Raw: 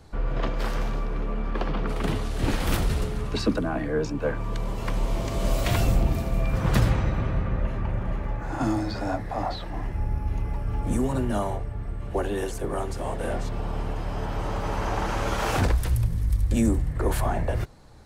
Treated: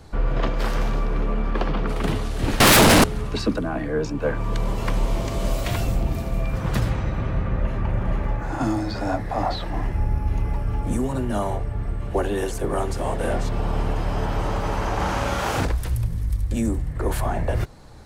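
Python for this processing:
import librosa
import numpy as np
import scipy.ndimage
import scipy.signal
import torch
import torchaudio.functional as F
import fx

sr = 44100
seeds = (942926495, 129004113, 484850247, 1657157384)

y = fx.rider(x, sr, range_db=4, speed_s=0.5)
y = fx.fold_sine(y, sr, drive_db=19, ceiling_db=-11.5, at=(2.6, 3.04))
y = fx.doubler(y, sr, ms=39.0, db=-2, at=(14.96, 15.65))
y = y * 10.0 ** (2.0 / 20.0)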